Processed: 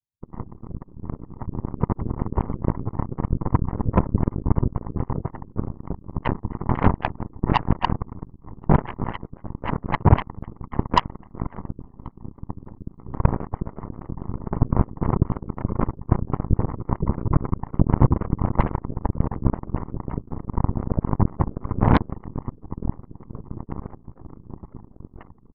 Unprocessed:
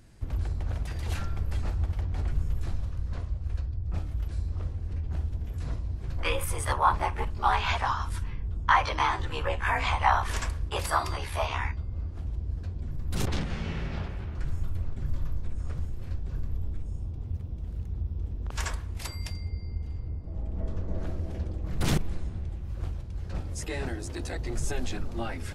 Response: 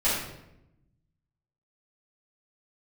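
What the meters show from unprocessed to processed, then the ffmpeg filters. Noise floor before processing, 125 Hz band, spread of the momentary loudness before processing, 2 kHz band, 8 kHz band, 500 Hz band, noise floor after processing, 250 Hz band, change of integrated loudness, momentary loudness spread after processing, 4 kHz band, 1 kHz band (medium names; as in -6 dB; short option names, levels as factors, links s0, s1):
-38 dBFS, +7.5 dB, 11 LU, -4.0 dB, under -15 dB, +7.0 dB, -52 dBFS, +14.0 dB, +6.5 dB, 17 LU, -3.5 dB, +1.5 dB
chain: -filter_complex "[0:a]aresample=16000,acrusher=samples=35:mix=1:aa=0.000001:lfo=1:lforange=56:lforate=3.8,aresample=44100,lowpass=f=990:t=q:w=6.4,dynaudnorm=f=610:g=9:m=2.82,asoftclip=type=tanh:threshold=0.501,acontrast=21,equalizer=f=100:t=o:w=1.9:g=14,afftfilt=real='hypot(re,im)*cos(2*PI*random(0))':imag='hypot(re,im)*sin(2*PI*random(1))':win_size=512:overlap=0.75,afftdn=nr=21:nf=-23,lowshelf=f=180:g=-4,asplit=2[s0][s1];[s1]aecho=0:1:1082|2164|3246|4328:0.0668|0.0388|0.0225|0.013[s2];[s0][s2]amix=inputs=2:normalize=0,aeval=exprs='0.841*(cos(1*acos(clip(val(0)/0.841,-1,1)))-cos(1*PI/2))+0.0266*(cos(3*acos(clip(val(0)/0.841,-1,1)))-cos(3*PI/2))+0.0168*(cos(5*acos(clip(val(0)/0.841,-1,1)))-cos(5*PI/2))+0.075*(cos(6*acos(clip(val(0)/0.841,-1,1)))-cos(6*PI/2))+0.119*(cos(7*acos(clip(val(0)/0.841,-1,1)))-cos(7*PI/2))':c=same,alimiter=level_in=1.33:limit=0.891:release=50:level=0:latency=1,volume=0.891"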